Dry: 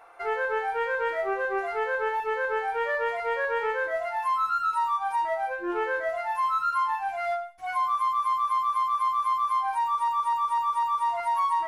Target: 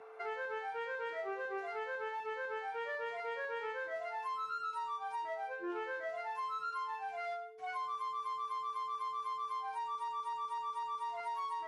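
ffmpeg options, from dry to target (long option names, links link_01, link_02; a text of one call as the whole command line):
ffmpeg -i in.wav -filter_complex "[0:a]aeval=exprs='val(0)+0.00501*sin(2*PI*440*n/s)':channel_layout=same,acrossover=split=240|3000[link_01][link_02][link_03];[link_02]acompressor=threshold=-35dB:ratio=3[link_04];[link_01][link_04][link_03]amix=inputs=3:normalize=0,highpass=160,lowpass=6300,volume=-5.5dB" out.wav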